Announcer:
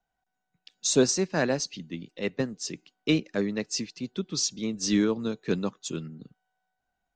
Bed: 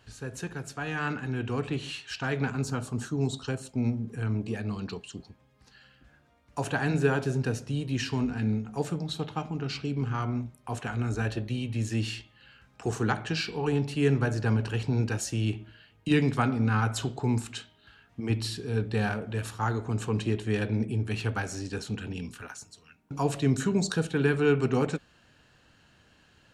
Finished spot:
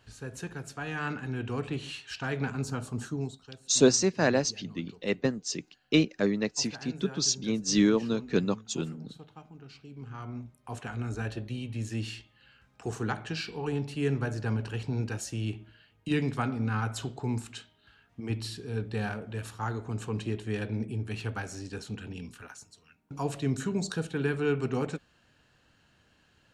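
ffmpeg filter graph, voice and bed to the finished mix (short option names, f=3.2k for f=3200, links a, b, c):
-filter_complex "[0:a]adelay=2850,volume=1dB[a];[1:a]volume=9.5dB,afade=t=out:st=3.13:d=0.24:silence=0.199526,afade=t=in:st=9.89:d=0.9:silence=0.251189[b];[a][b]amix=inputs=2:normalize=0"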